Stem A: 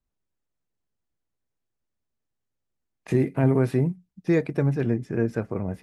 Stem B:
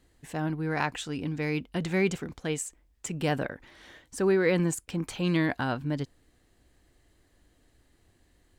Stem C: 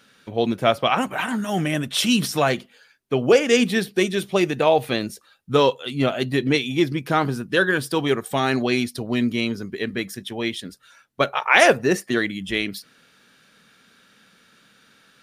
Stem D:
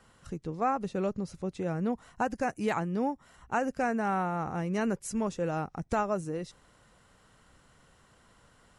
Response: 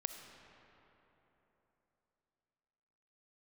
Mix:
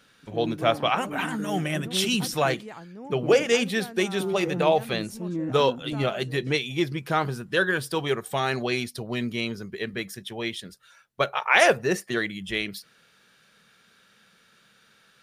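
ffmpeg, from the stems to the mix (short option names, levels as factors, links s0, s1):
-filter_complex "[1:a]bandpass=f=260:t=q:w=1.9:csg=0,volume=1[s0];[2:a]equalizer=f=270:w=4.2:g=-10.5,volume=0.668[s1];[3:a]volume=0.266[s2];[s0][s1][s2]amix=inputs=3:normalize=0"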